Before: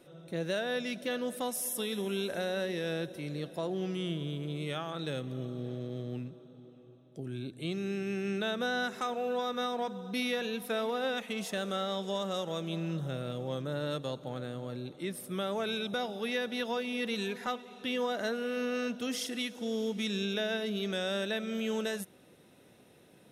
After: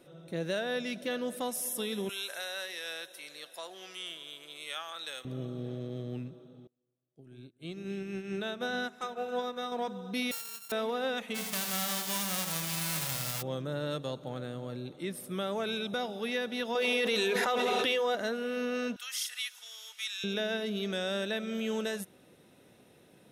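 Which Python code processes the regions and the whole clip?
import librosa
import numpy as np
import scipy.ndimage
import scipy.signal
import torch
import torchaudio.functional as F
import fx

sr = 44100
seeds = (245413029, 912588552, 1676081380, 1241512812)

y = fx.chain(x, sr, fx.highpass(hz=980.0, slope=12),
    fx.high_shelf(hz=4500.0, db=8.5), at=(2.09, 5.25))
y = fx.chain(y, sr, fx.echo_alternate(ms=137, hz=1200.0, feedback_pct=76, wet_db=-10.5),
    fx.upward_expand(threshold_db=-49.0, expansion=2.5), at=(6.67, 9.72))
y = fx.chain(y, sr, fx.sample_sort(block=32),
    fx.pre_emphasis(coefficient=0.97), at=(10.31, 10.72))
y = fx.envelope_flatten(y, sr, power=0.1, at=(11.34, 13.41), fade=0.02)
y = fx.echo_feedback(y, sr, ms=80, feedback_pct=53, wet_db=-7.0, at=(11.34, 13.41), fade=0.02)
y = fx.chain(y, sr, fx.low_shelf_res(hz=320.0, db=-6.5, q=1.5),
    fx.hum_notches(base_hz=50, count=7),
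    fx.env_flatten(amount_pct=100), at=(16.75, 18.15))
y = fx.chain(y, sr, fx.highpass(hz=1200.0, slope=24),
    fx.high_shelf(hz=8800.0, db=9.0), at=(18.96, 20.24))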